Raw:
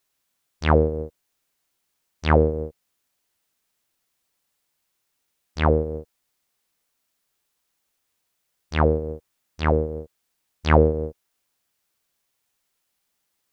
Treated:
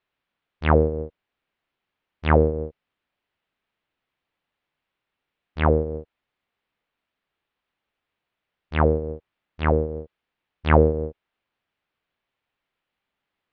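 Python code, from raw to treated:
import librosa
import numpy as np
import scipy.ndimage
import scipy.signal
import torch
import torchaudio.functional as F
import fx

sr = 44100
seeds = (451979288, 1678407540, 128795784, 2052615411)

y = scipy.signal.sosfilt(scipy.signal.butter(4, 3200.0, 'lowpass', fs=sr, output='sos'), x)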